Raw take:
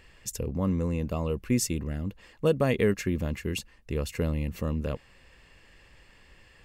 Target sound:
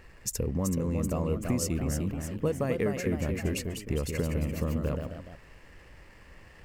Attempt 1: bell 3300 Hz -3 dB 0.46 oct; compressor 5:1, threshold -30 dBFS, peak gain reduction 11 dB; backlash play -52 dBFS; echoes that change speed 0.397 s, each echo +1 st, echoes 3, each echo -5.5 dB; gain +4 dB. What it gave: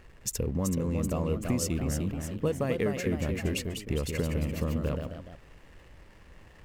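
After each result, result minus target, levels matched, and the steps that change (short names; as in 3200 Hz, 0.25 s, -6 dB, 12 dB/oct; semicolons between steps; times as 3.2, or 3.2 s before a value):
backlash: distortion +7 dB; 4000 Hz band +2.5 dB
change: backlash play -59.5 dBFS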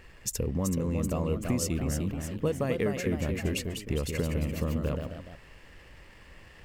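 4000 Hz band +2.5 dB
change: bell 3300 Hz -10.5 dB 0.46 oct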